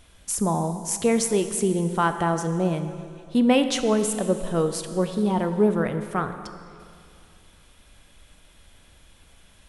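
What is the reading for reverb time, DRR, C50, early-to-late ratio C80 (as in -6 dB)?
2.4 s, 8.0 dB, 9.0 dB, 10.0 dB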